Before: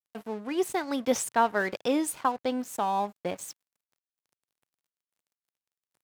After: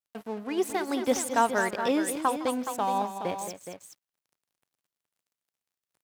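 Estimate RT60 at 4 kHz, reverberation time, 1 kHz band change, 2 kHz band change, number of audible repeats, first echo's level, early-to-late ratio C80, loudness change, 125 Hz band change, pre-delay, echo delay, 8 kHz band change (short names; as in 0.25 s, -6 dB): none, none, +1.0 dB, +1.0 dB, 3, -18.5 dB, none, +0.5 dB, +1.0 dB, none, 0.159 s, +1.0 dB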